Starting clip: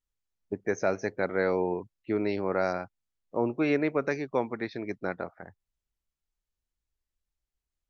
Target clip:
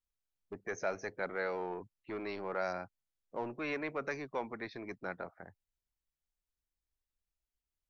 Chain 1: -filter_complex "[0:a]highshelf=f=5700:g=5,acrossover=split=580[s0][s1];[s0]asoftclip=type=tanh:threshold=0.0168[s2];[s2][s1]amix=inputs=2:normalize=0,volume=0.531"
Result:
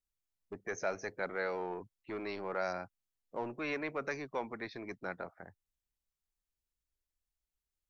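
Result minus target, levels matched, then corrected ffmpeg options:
8 kHz band +2.5 dB
-filter_complex "[0:a]acrossover=split=580[s0][s1];[s0]asoftclip=type=tanh:threshold=0.0168[s2];[s2][s1]amix=inputs=2:normalize=0,volume=0.531"

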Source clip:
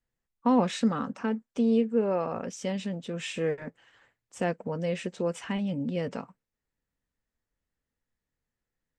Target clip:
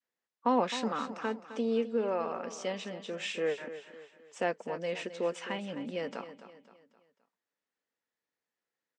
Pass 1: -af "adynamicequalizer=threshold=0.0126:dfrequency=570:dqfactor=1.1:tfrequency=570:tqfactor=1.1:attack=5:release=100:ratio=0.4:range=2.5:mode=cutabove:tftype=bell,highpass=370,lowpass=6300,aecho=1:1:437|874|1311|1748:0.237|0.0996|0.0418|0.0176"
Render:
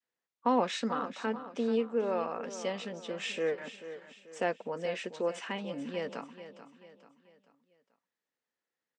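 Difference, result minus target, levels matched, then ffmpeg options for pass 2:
echo 176 ms late
-af "adynamicequalizer=threshold=0.0126:dfrequency=570:dqfactor=1.1:tfrequency=570:tqfactor=1.1:attack=5:release=100:ratio=0.4:range=2.5:mode=cutabove:tftype=bell,highpass=370,lowpass=6300,aecho=1:1:261|522|783|1044:0.237|0.0996|0.0418|0.0176"

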